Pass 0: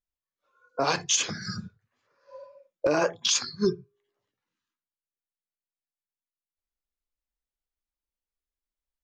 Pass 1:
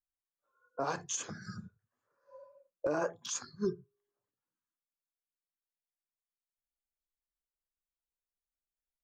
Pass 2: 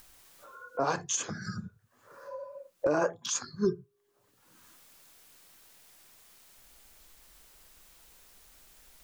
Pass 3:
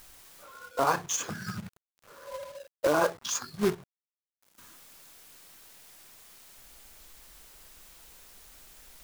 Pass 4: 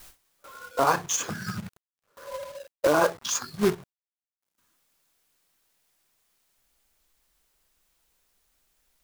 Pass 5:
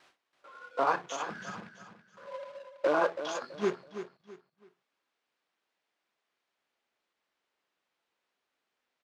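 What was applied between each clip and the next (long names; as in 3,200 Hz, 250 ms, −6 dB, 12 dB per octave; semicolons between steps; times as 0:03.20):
flat-topped bell 3,300 Hz −10.5 dB; level −8.5 dB
upward compression, threshold −38 dBFS; level +5.5 dB
log-companded quantiser 4 bits; dynamic equaliser 1,100 Hz, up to +6 dB, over −45 dBFS, Q 1.2
noise gate with hold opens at −43 dBFS; level +3.5 dB
band-pass filter 270–3,100 Hz; on a send: repeating echo 329 ms, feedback 31%, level −10.5 dB; on the sum: level −5 dB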